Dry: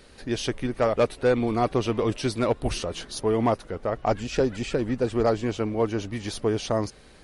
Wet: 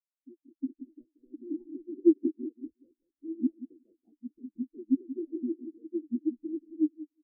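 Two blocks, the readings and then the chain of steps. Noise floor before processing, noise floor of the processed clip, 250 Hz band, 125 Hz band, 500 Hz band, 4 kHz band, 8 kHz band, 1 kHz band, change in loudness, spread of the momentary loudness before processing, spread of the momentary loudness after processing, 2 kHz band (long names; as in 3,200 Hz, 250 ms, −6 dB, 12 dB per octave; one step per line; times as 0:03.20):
−51 dBFS, below −85 dBFS, −2.5 dB, below −30 dB, −14.0 dB, below −40 dB, below −40 dB, below −40 dB, −6.5 dB, 7 LU, 21 LU, below −40 dB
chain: linear delta modulator 32 kbit/s, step −36 dBFS
dynamic equaliser 400 Hz, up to +6 dB, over −37 dBFS, Q 0.73
harmonic and percussive parts rebalanced harmonic −18 dB
low-shelf EQ 120 Hz +11 dB
downward compressor, threshold −28 dBFS, peak gain reduction 14.5 dB
brickwall limiter −24 dBFS, peak gain reduction 8.5 dB
automatic gain control gain up to 7 dB
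formant resonators in series u
repeating echo 181 ms, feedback 43%, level −3.5 dB
every bin expanded away from the loudest bin 4 to 1
level +7.5 dB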